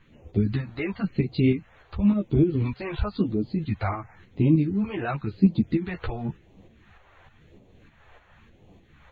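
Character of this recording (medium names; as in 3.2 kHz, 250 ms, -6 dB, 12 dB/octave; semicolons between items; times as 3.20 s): phasing stages 2, 0.95 Hz, lowest notch 210–1500 Hz; tremolo saw up 3.3 Hz, depth 50%; a shimmering, thickened sound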